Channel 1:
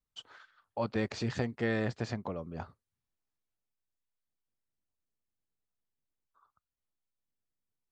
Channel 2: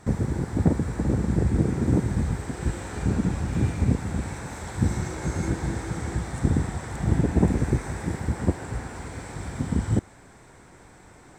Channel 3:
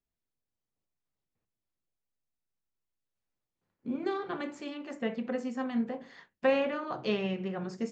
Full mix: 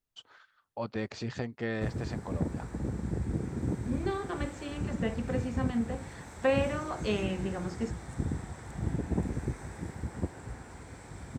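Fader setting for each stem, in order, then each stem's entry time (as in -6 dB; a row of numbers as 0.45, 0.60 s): -2.5, -10.5, -0.5 dB; 0.00, 1.75, 0.00 s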